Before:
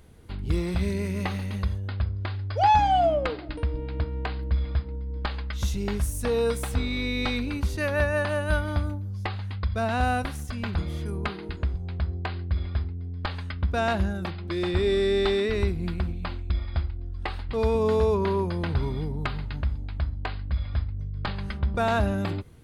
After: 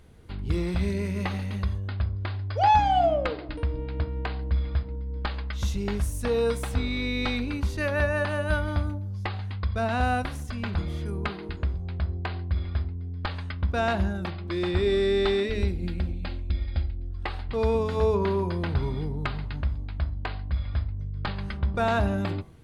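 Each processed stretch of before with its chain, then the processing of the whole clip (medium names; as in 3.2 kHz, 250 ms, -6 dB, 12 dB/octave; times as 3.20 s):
15.43–17.11 s: peaking EQ 1.1 kHz -11 dB 0.83 oct + comb 3.7 ms, depth 33%
whole clip: treble shelf 8.9 kHz -7.5 dB; de-hum 54.27 Hz, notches 21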